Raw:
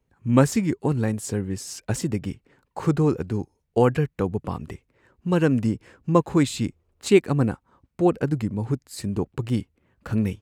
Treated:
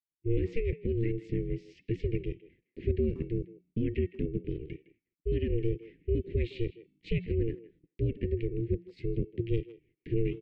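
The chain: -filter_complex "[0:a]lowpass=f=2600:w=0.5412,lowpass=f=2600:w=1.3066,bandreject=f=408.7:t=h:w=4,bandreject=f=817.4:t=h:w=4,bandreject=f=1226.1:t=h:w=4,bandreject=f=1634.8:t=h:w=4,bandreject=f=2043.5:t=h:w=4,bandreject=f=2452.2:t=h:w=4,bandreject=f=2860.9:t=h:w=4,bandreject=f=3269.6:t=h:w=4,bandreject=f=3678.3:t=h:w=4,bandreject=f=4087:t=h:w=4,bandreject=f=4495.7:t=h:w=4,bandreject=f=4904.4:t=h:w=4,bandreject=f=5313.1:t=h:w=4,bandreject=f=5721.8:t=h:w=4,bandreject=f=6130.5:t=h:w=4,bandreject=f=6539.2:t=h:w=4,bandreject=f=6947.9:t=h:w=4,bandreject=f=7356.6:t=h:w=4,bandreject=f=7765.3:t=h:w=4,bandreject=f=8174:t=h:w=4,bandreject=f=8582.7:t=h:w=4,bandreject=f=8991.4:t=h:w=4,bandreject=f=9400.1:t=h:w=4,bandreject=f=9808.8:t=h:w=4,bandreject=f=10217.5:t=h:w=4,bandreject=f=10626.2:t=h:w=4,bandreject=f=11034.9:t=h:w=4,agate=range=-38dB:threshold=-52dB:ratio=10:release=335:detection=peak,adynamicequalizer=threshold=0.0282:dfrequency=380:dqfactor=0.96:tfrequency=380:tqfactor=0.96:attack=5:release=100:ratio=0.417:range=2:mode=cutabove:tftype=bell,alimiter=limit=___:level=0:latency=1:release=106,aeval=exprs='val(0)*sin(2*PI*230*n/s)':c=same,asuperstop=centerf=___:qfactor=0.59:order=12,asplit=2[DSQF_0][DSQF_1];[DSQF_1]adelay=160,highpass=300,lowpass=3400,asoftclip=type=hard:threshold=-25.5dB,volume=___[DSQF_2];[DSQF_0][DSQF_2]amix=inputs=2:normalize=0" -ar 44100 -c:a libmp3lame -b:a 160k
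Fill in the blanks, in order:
-14.5dB, 950, -15dB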